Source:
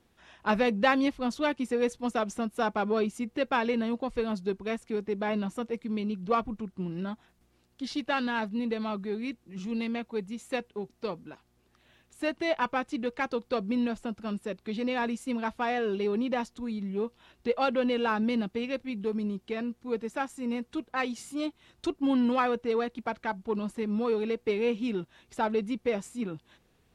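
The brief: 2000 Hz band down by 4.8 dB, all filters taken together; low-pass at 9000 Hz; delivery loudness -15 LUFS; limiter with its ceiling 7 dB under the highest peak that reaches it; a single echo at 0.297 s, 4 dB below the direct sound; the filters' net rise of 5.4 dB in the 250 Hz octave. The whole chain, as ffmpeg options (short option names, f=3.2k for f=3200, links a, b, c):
-af "lowpass=9k,equalizer=f=250:t=o:g=6,equalizer=f=2k:t=o:g=-6.5,alimiter=limit=-18.5dB:level=0:latency=1,aecho=1:1:297:0.631,volume=12.5dB"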